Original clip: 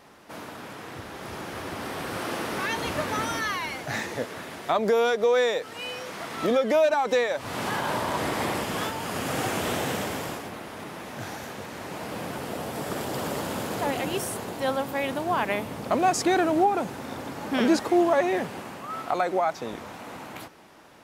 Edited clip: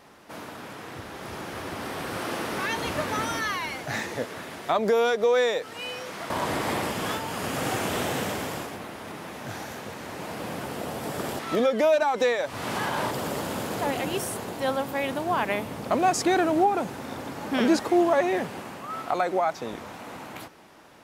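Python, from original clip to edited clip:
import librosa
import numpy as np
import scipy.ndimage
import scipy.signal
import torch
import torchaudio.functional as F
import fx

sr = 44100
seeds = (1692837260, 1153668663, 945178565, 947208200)

y = fx.edit(x, sr, fx.move(start_s=6.3, length_s=1.72, to_s=13.11), tone=tone)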